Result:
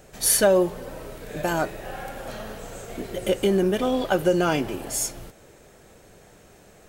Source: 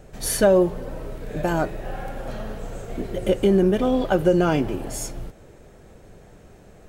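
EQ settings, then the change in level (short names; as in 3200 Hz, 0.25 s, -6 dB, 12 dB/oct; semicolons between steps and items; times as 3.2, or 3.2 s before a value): tilt +2 dB/oct; 0.0 dB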